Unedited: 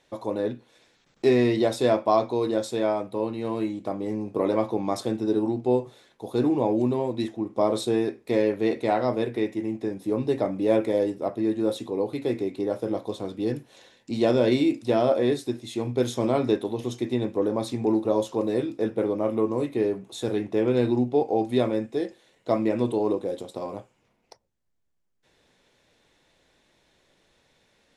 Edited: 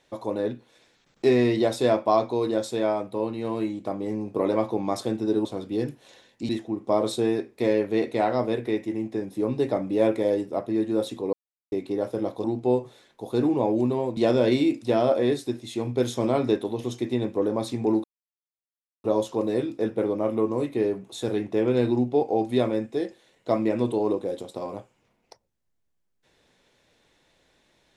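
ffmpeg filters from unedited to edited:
-filter_complex "[0:a]asplit=8[a][b][c][d][e][f][g][h];[a]atrim=end=5.452[i];[b]atrim=start=13.128:end=14.172[j];[c]atrim=start=7.178:end=12.02,asetpts=PTS-STARTPTS,afade=t=out:st=4.838:d=0.004:c=hsin[k];[d]atrim=start=12.02:end=12.41,asetpts=PTS-STARTPTS,volume=0[l];[e]atrim=start=12.41:end=13.132,asetpts=PTS-STARTPTS,afade=t=in:d=0.004:c=hsin[m];[f]atrim=start=5.448:end=7.182[n];[g]atrim=start=14.168:end=18.04,asetpts=PTS-STARTPTS,afade=t=out:st=3.868:d=0.004:c=hsin,apad=pad_dur=1[o];[h]atrim=start=18.04,asetpts=PTS-STARTPTS,afade=t=in:d=0.004:c=hsin[p];[i][j]acrossfade=d=0.004:c1=hsin:c2=hsin[q];[k][l][m]concat=n=3:v=0:a=1[r];[q][r]acrossfade=d=0.004:c1=hsin:c2=hsin[s];[s][n]acrossfade=d=0.004:c1=hsin:c2=hsin[t];[o][p]concat=n=2:v=0:a=1[u];[t][u]acrossfade=d=0.004:c1=hsin:c2=hsin"

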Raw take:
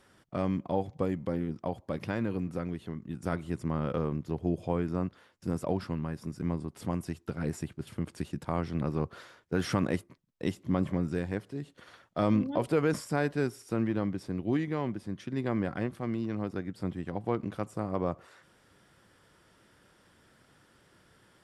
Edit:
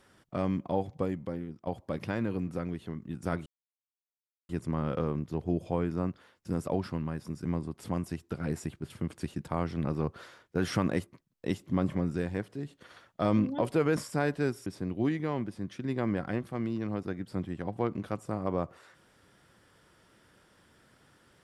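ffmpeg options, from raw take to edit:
-filter_complex "[0:a]asplit=4[a][b][c][d];[a]atrim=end=1.67,asetpts=PTS-STARTPTS,afade=t=out:st=0.93:d=0.74:silence=0.281838[e];[b]atrim=start=1.67:end=3.46,asetpts=PTS-STARTPTS,afade=t=in:d=0.004:c=hsin:silence=0.281838,afade=t=out:st=1.786:d=0.004:c=hsin,apad=pad_dur=1.03[f];[c]atrim=start=3.46:end=13.632,asetpts=PTS-STARTPTS,afade=t=in:d=0.004:c=hsin[g];[d]atrim=start=14.138[h];[e][f][g]concat=n=3:v=0:a=1[i];[i][h]acrossfade=d=0.004:c1=hsin:c2=hsin"

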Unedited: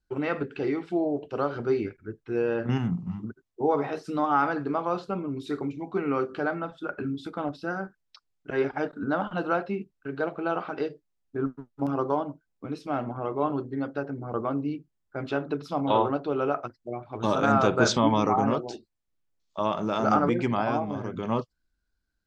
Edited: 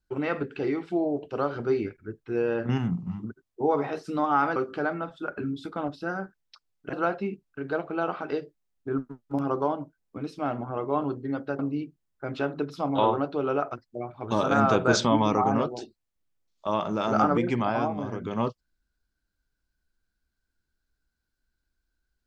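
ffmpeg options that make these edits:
-filter_complex "[0:a]asplit=4[a][b][c][d];[a]atrim=end=4.562[e];[b]atrim=start=6.168:end=8.542[f];[c]atrim=start=9.408:end=14.072[g];[d]atrim=start=14.508[h];[e][f]acrossfade=d=0.004:c1=hsin:c2=hsin[i];[i][g]acrossfade=d=0.004:c1=hsin:c2=hsin[j];[j][h]acrossfade=d=0.004:c1=hsin:c2=hsin"

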